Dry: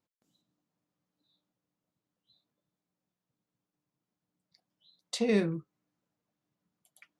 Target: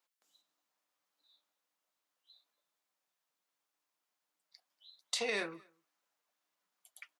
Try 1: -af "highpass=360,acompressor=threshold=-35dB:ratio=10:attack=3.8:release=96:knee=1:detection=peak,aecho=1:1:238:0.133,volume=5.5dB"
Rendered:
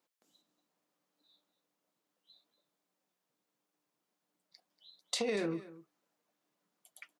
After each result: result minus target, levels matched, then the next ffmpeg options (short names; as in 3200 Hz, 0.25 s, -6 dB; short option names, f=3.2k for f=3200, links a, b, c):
echo-to-direct +11.5 dB; 500 Hz band +3.5 dB
-af "highpass=360,acompressor=threshold=-35dB:ratio=10:attack=3.8:release=96:knee=1:detection=peak,aecho=1:1:238:0.0355,volume=5.5dB"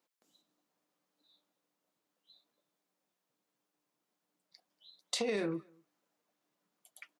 500 Hz band +3.5 dB
-af "highpass=880,acompressor=threshold=-35dB:ratio=10:attack=3.8:release=96:knee=1:detection=peak,aecho=1:1:238:0.0355,volume=5.5dB"